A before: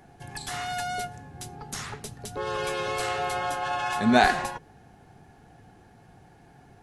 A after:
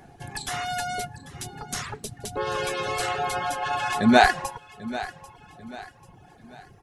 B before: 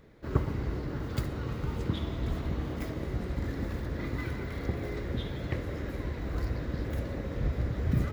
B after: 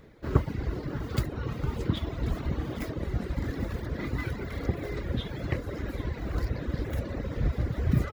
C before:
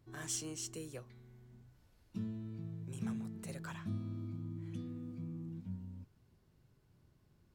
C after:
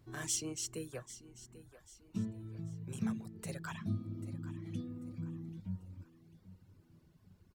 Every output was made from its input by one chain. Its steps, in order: feedback echo 0.791 s, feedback 39%, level -15.5 dB; reverb removal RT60 0.92 s; gain +4 dB

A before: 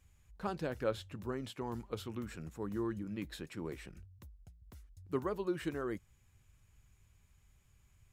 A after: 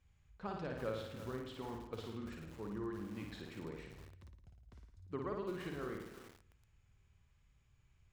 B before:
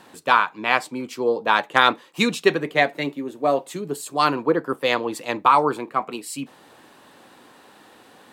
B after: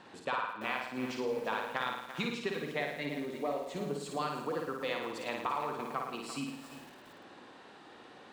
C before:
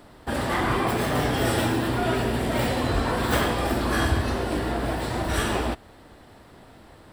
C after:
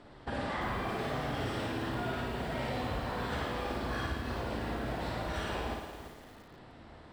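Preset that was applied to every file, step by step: LPF 5000 Hz 12 dB/oct; de-hum 316.9 Hz, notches 3; dynamic EQ 330 Hz, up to -5 dB, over -43 dBFS, Q 3.4; compressor 5:1, threshold -29 dBFS; flutter echo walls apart 9.4 m, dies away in 0.81 s; lo-fi delay 0.341 s, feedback 35%, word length 7-bit, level -10.5 dB; gain -5.5 dB

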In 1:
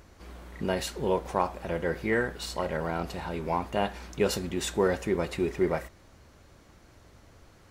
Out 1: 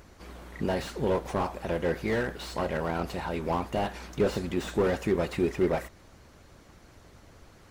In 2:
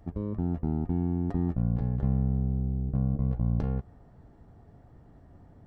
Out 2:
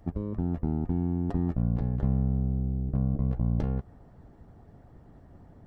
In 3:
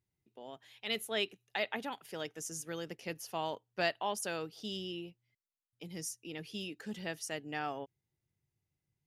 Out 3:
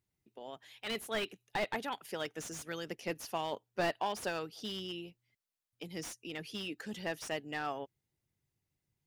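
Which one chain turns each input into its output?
harmonic-percussive split harmonic -6 dB; slew limiter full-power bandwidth 27 Hz; gain +4.5 dB

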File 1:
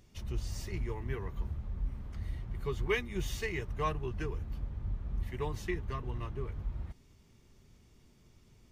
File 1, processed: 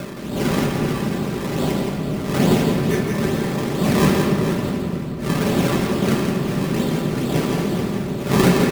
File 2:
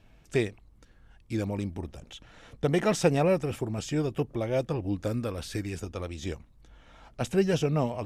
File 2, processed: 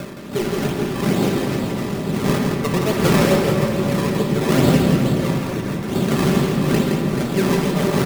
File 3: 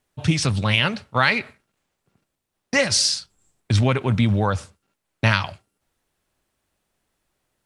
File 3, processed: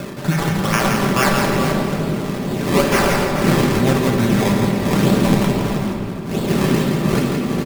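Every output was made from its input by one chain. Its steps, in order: wind noise 280 Hz -22 dBFS; HPF 130 Hz 12 dB/oct; in parallel at +0.5 dB: compressor, threshold -31 dBFS; on the sum: decimation with a swept rate 21×, swing 100% 2.3 Hz; comb 5.1 ms, depth 39%; on a send: tapped delay 0.167/0.433 s -5/-10 dB; on the sum: shoebox room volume 120 m³, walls hard, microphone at 0.33 m; gain -2 dB

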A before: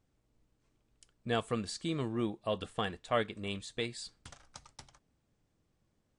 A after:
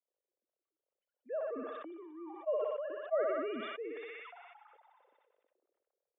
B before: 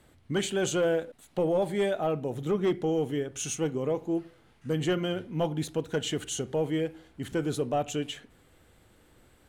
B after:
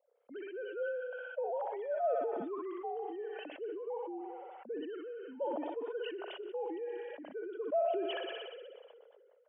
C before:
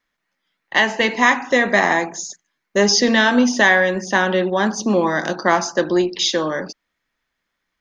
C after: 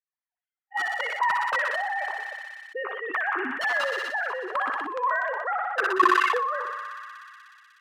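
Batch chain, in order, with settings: sine-wave speech; wrapped overs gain 7 dB; auto-wah 530–1200 Hz, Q 4.5, up, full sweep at -17 dBFS; thinning echo 61 ms, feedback 83%, high-pass 690 Hz, level -10 dB; sustainer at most 24 dB/s

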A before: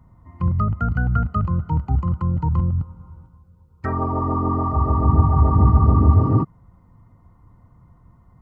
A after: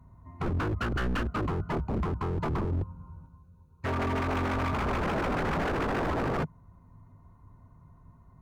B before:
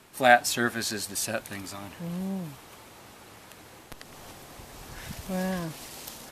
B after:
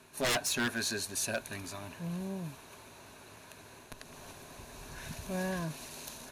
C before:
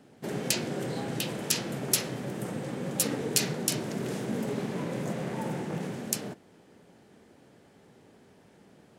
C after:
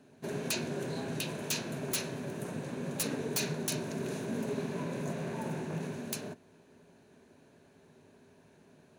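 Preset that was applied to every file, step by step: ripple EQ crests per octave 1.5, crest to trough 7 dB; wavefolder -20 dBFS; gain -4 dB

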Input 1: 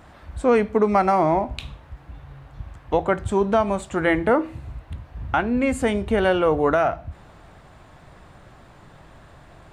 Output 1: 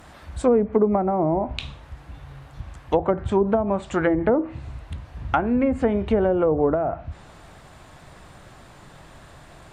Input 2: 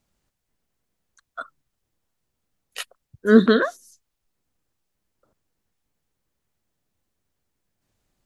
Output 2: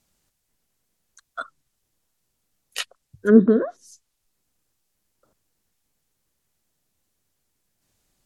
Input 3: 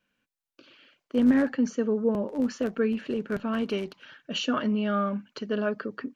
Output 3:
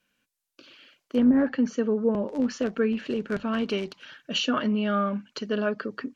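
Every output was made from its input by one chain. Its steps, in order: high shelf 3900 Hz +9 dB; treble ducked by the level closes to 550 Hz, closed at -14.5 dBFS; notches 50/100 Hz; gain +1 dB

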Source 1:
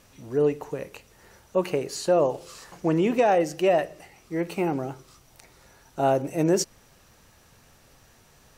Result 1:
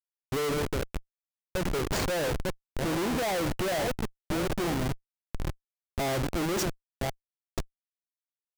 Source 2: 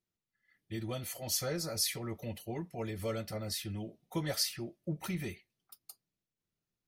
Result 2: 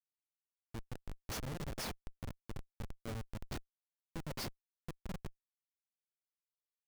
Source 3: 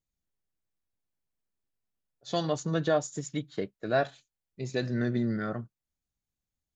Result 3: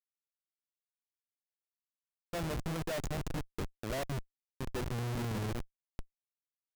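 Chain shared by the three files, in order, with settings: reverse delay 0.507 s, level -12 dB; Schmitt trigger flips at -30.5 dBFS; gain -1.5 dB

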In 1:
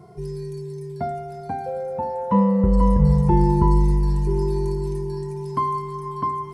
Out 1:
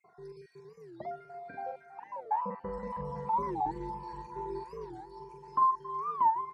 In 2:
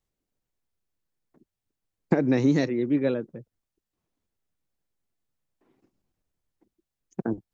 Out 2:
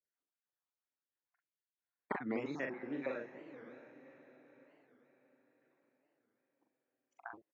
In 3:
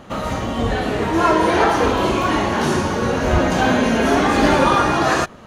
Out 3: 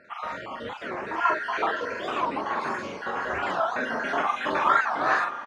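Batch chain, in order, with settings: random spectral dropouts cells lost 52%; band-pass 1400 Hz, Q 1.1; doubler 43 ms -4 dB; on a send: diffused feedback echo 0.588 s, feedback 46%, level -13 dB; on the sum: record warp 45 rpm, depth 250 cents; gain -3.5 dB

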